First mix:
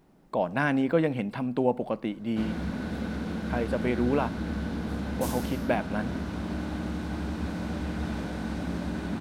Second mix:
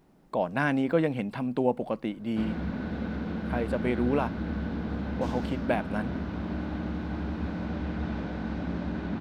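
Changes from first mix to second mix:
background: add distance through air 190 m; reverb: off

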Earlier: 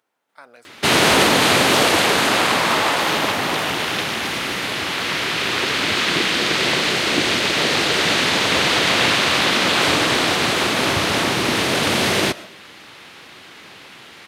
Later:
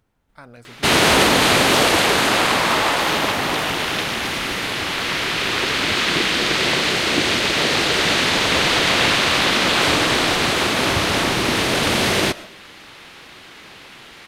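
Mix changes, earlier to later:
speech: remove high-pass 470 Hz 12 dB/octave; master: remove high-pass 88 Hz

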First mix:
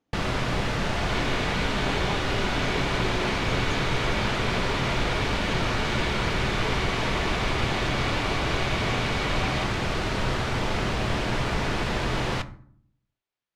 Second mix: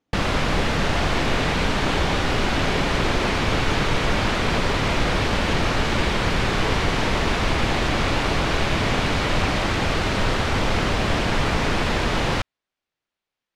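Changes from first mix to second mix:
first sound +7.0 dB; reverb: off

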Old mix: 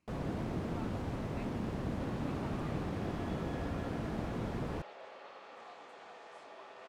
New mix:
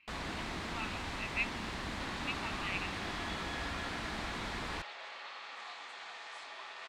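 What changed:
speech: add resonant low-pass 2.7 kHz, resonance Q 4.9; master: add ten-band graphic EQ 125 Hz -11 dB, 250 Hz -3 dB, 500 Hz -7 dB, 1 kHz +4 dB, 2 kHz +8 dB, 4 kHz +11 dB, 8 kHz +8 dB

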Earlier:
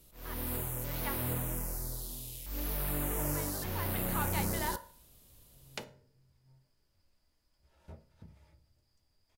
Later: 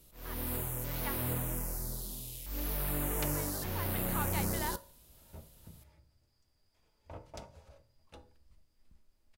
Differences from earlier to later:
speech: send -9.5 dB; second sound: entry -2.55 s

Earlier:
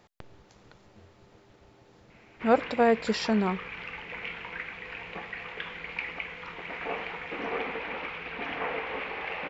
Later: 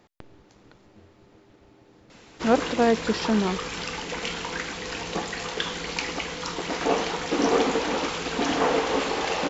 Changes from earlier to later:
background: remove four-pole ladder low-pass 2.6 kHz, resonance 60%; master: add peaking EQ 290 Hz +7 dB 0.72 oct

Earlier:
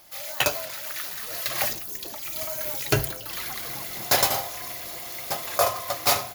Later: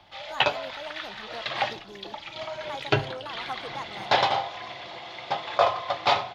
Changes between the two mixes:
speech +9.0 dB; background: add cabinet simulation 110–3800 Hz, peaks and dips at 250 Hz -4 dB, 860 Hz +8 dB, 3.4 kHz +6 dB

